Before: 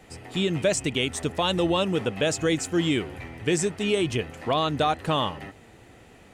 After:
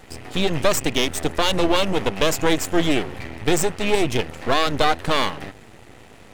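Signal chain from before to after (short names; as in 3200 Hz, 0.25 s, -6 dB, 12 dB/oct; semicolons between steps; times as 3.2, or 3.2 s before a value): half-wave rectifier; gain +9 dB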